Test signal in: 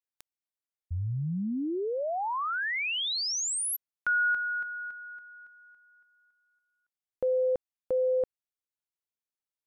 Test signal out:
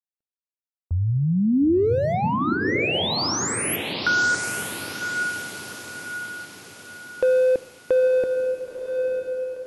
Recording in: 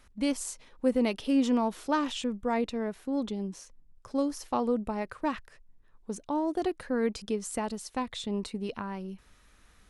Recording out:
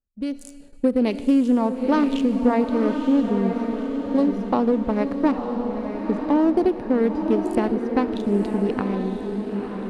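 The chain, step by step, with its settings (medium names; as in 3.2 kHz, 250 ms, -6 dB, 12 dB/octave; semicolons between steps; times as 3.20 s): local Wiener filter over 41 samples; Schroeder reverb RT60 1.3 s, combs from 25 ms, DRR 18 dB; gate -55 dBFS, range -26 dB; compression, threshold -29 dBFS; peaking EQ 8.2 kHz -3 dB 0.61 oct; level rider gain up to 10 dB; dynamic bell 330 Hz, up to +5 dB, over -37 dBFS, Q 1; echo that smears into a reverb 954 ms, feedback 50%, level -5.5 dB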